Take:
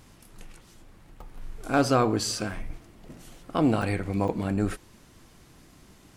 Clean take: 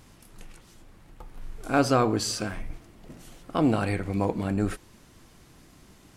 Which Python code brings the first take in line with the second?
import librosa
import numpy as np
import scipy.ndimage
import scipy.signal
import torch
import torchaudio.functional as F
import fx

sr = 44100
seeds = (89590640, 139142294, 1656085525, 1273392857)

y = fx.fix_declip(x, sr, threshold_db=-11.0)
y = fx.fix_interpolate(y, sr, at_s=(1.21, 3.82, 4.28), length_ms=3.1)